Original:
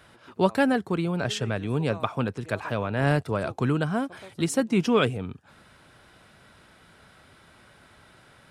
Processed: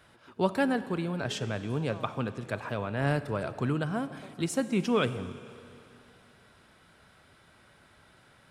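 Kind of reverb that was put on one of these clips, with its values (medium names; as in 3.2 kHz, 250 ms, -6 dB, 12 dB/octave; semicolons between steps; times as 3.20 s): Schroeder reverb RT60 2.8 s, combs from 29 ms, DRR 13 dB; trim -5 dB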